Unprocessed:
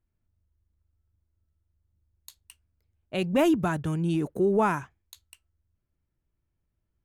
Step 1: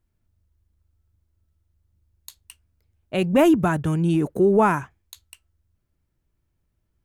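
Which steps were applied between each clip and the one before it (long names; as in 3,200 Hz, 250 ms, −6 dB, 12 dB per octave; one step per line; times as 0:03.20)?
dynamic equaliser 4,400 Hz, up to −6 dB, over −50 dBFS, Q 1.2
level +6 dB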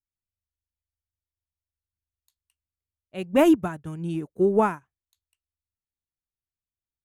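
expander for the loud parts 2.5 to 1, over −32 dBFS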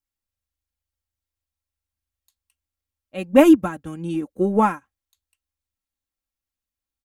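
comb filter 3.7 ms
level +3 dB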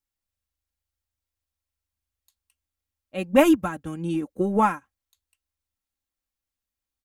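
dynamic equaliser 320 Hz, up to −6 dB, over −23 dBFS, Q 0.74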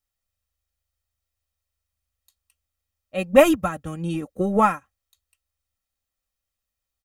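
comb filter 1.6 ms, depth 45%
level +2.5 dB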